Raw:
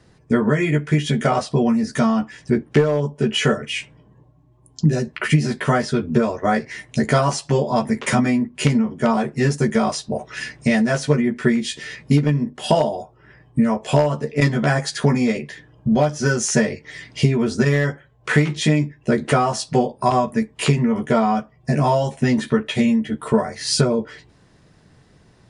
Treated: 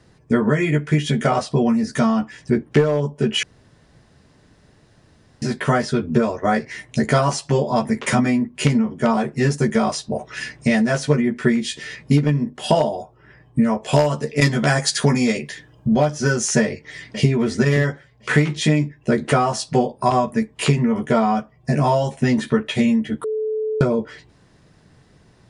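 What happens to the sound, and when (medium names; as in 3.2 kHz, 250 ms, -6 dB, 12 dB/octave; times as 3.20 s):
3.43–5.42 s: room tone
13.93–15.87 s: treble shelf 3.4 kHz +9.5 dB
16.61–17.29 s: echo throw 530 ms, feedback 25%, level -10 dB
23.24–23.81 s: bleep 434 Hz -20 dBFS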